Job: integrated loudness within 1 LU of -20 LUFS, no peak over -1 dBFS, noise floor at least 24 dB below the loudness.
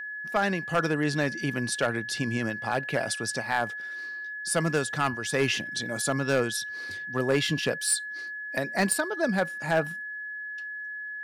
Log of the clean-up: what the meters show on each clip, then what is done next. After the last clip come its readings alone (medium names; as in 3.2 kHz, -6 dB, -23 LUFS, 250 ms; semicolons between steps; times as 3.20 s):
clipped samples 0.4%; clipping level -16.5 dBFS; steady tone 1.7 kHz; tone level -34 dBFS; loudness -28.5 LUFS; peak level -16.5 dBFS; loudness target -20.0 LUFS
-> clip repair -16.5 dBFS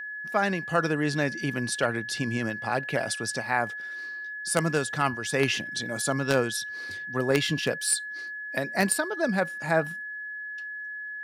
clipped samples 0.0%; steady tone 1.7 kHz; tone level -34 dBFS
-> band-stop 1.7 kHz, Q 30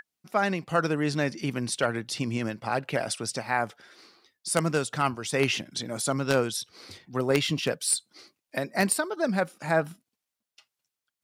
steady tone not found; loudness -28.0 LUFS; peak level -7.0 dBFS; loudness target -20.0 LUFS
-> trim +8 dB; peak limiter -1 dBFS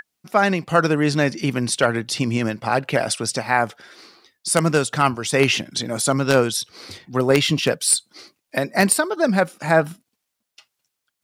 loudness -20.0 LUFS; peak level -1.0 dBFS; noise floor -79 dBFS